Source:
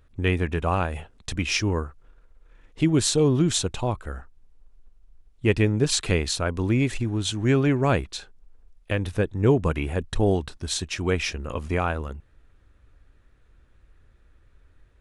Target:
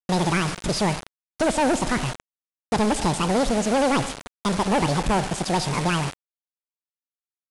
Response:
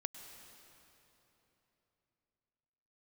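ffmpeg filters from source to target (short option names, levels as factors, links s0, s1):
-filter_complex "[0:a]aeval=exprs='val(0)+0.5*0.0237*sgn(val(0))':c=same,agate=range=0.0224:threshold=0.0251:ratio=3:detection=peak,highshelf=f=3000:g=-5.5,asplit=2[s0][s1];[s1]adelay=150,lowpass=f=1100:p=1,volume=0.119,asplit=2[s2][s3];[s3]adelay=150,lowpass=f=1100:p=1,volume=0.17[s4];[s0][s2][s4]amix=inputs=3:normalize=0,asplit=2[s5][s6];[1:a]atrim=start_sample=2205,lowshelf=f=160:g=-3.5[s7];[s6][s7]afir=irnorm=-1:irlink=0,volume=0.596[s8];[s5][s8]amix=inputs=2:normalize=0,asoftclip=type=hard:threshold=0.112,aemphasis=mode=reproduction:type=75fm,aresample=11025,acrusher=bits=4:mix=0:aa=0.000001,aresample=44100,asetrate=88200,aresample=44100"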